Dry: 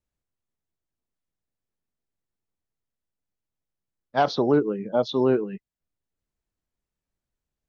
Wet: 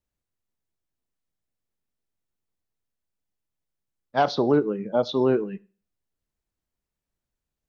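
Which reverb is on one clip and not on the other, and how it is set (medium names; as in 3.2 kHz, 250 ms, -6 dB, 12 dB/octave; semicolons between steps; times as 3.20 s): Schroeder reverb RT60 0.39 s, combs from 26 ms, DRR 19.5 dB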